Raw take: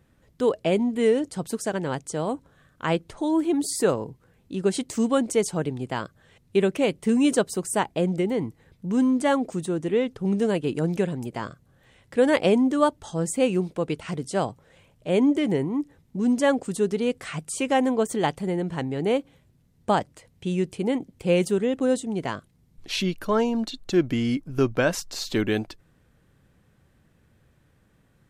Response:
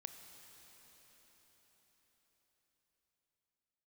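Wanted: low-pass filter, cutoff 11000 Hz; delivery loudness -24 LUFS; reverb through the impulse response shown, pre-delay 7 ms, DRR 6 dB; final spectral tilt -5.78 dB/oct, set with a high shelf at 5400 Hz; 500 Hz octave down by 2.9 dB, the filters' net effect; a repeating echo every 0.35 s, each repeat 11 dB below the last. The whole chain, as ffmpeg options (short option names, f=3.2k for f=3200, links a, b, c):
-filter_complex "[0:a]lowpass=11k,equalizer=f=500:t=o:g=-3.5,highshelf=f=5.4k:g=-4,aecho=1:1:350|700|1050:0.282|0.0789|0.0221,asplit=2[a][b];[1:a]atrim=start_sample=2205,adelay=7[c];[b][c]afir=irnorm=-1:irlink=0,volume=-1.5dB[d];[a][d]amix=inputs=2:normalize=0,volume=1.5dB"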